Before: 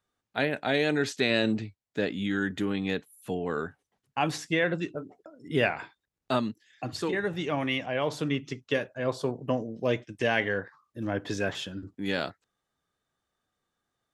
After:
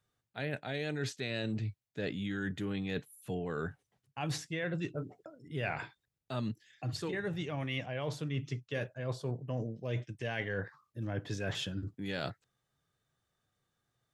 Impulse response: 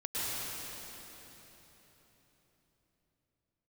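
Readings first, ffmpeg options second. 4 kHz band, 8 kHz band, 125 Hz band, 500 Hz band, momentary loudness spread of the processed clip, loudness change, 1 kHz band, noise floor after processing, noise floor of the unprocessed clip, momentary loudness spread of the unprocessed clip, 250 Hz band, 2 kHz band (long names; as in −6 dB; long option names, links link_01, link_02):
−8.0 dB, −5.0 dB, −0.5 dB, −10.0 dB, 6 LU, −8.0 dB, −10.5 dB, below −85 dBFS, below −85 dBFS, 11 LU, −8.0 dB, −9.5 dB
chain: -af "equalizer=frequency=125:width_type=o:width=1:gain=10,equalizer=frequency=250:width_type=o:width=1:gain=-4,equalizer=frequency=1000:width_type=o:width=1:gain=-3,areverse,acompressor=threshold=-33dB:ratio=6,areverse"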